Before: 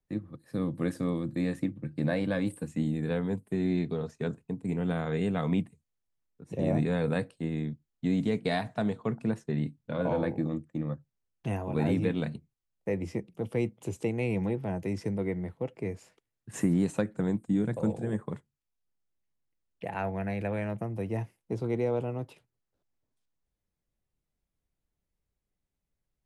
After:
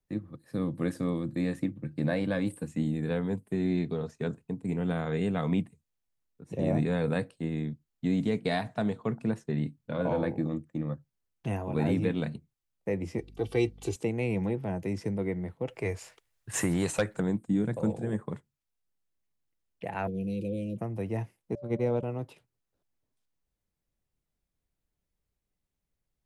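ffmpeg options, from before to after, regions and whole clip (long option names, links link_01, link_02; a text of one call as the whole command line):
ffmpeg -i in.wav -filter_complex "[0:a]asettb=1/sr,asplit=3[link_01][link_02][link_03];[link_01]atrim=end=13.184[link_04];[link_02]atrim=start=13.18:end=13.96,asetpts=PTS-STARTPTS,afade=type=in:duration=0.004:curve=qsin,afade=type=out:start_time=0.776:duration=0.004:curve=qsin,equalizer=frequency=4200:width=1.3:gain=11,aecho=1:1:2.6:0.8,atrim=end_sample=34398,aeval=exprs='val(0)+0.00316*(sin(2*PI*50*n/s)+sin(2*PI*2*50*n/s)/2+sin(2*PI*3*50*n/s)/3+sin(2*PI*4*50*n/s)/4+sin(2*PI*5*50*n/s)/5)':channel_layout=same[link_05];[link_03]atrim=start=13.956[link_06];[link_04][link_05]acrossfade=duration=0.004:curve1=hsin:curve2=qsin[link_07];[link_07][link_06]acrossfade=duration=0.004:curve1=qsin:curve2=hsin,asettb=1/sr,asplit=3[link_08][link_09][link_10];[link_08]atrim=end=15.684[link_11];[link_09]atrim=start=15.68:end=17.2,asetpts=PTS-STARTPTS,afade=type=in:duration=0.004:curve=qsin,afade=type=out:start_time=1.516:duration=0.004:curve=qsin,equalizer=frequency=220:width_type=o:width=1.7:gain=-15,aeval=exprs='0.126*sin(PI/2*2*val(0)/0.126)':channel_layout=same[link_12];[link_10]atrim=start=17.196[link_13];[link_11][link_12]acrossfade=duration=0.004:curve1=hsin:curve2=qsin[link_14];[link_14][link_13]acrossfade=duration=0.004:curve1=qsin:curve2=hsin,asettb=1/sr,asplit=3[link_15][link_16][link_17];[link_15]atrim=end=20.074[link_18];[link_16]atrim=start=20.07:end=20.78,asetpts=PTS-STARTPTS,afade=type=in:duration=0.004:curve=qsin,afade=type=out:start_time=0.706:duration=0.004:curve=qsin,asuperstop=centerf=1200:order=12:qfactor=0.53,aecho=1:1:5.9:0.48,atrim=end_sample=31311[link_19];[link_17]atrim=start=20.776[link_20];[link_18][link_19]acrossfade=duration=0.004:curve1=hsin:curve2=qsin[link_21];[link_21][link_20]acrossfade=duration=0.004:curve1=qsin:curve2=hsin,asettb=1/sr,asplit=3[link_22][link_23][link_24];[link_22]atrim=end=21.554[link_25];[link_23]atrim=start=21.55:end=22.03,asetpts=PTS-STARTPTS,afade=type=in:duration=0.004:curve=qsin,afade=type=out:start_time=0.476:duration=0.004:curve=qsin,agate=range=-28dB:threshold=-30dB:ratio=16:release=100:detection=peak,equalizer=frequency=170:width_type=o:width=0.52:gain=13,aeval=exprs='val(0)+0.00708*sin(2*PI*580*n/s)':channel_layout=same[link_26];[link_24]atrim=start=22.026[link_27];[link_25][link_26]acrossfade=duration=0.004:curve1=hsin:curve2=qsin[link_28];[link_28][link_27]acrossfade=duration=0.004:curve1=qsin:curve2=hsin" out.wav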